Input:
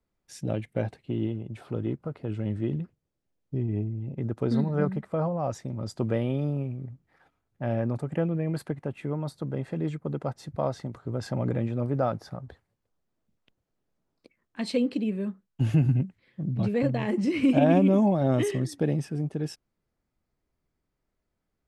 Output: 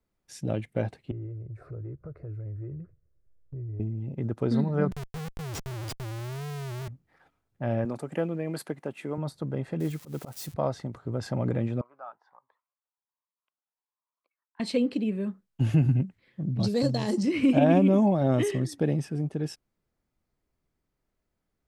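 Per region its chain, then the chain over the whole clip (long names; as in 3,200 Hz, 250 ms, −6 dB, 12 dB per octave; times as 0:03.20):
0:01.11–0:03.80: RIAA equalisation playback + phaser with its sweep stopped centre 860 Hz, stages 6 + downward compressor 3 to 1, threshold −40 dBFS
0:04.91–0:06.88: Chebyshev band-stop filter 140–2,500 Hz, order 5 + comparator with hysteresis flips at −46 dBFS
0:07.85–0:09.18: high-pass filter 220 Hz + high-shelf EQ 4,400 Hz +7.5 dB
0:09.80–0:10.54: spike at every zero crossing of −33.5 dBFS + volume swells 133 ms
0:11.81–0:14.60: four-pole ladder band-pass 1,100 Hz, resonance 70% + phaser whose notches keep moving one way rising 1.3 Hz
0:16.60–0:17.23: high shelf with overshoot 3,400 Hz +12.5 dB, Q 3 + one half of a high-frequency compander decoder only
whole clip: no processing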